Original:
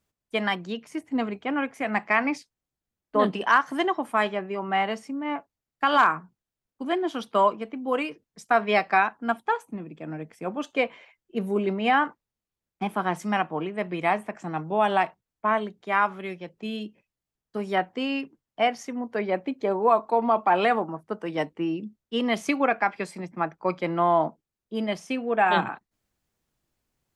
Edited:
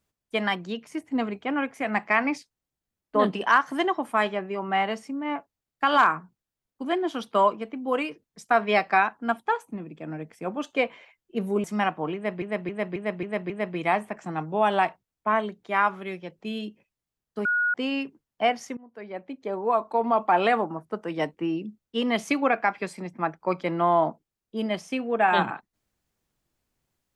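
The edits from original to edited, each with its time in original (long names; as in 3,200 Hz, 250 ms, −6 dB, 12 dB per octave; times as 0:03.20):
0:11.64–0:13.17: remove
0:13.68–0:13.95: repeat, 6 plays
0:17.63–0:17.92: beep over 1,450 Hz −20.5 dBFS
0:18.95–0:20.43: fade in linear, from −22 dB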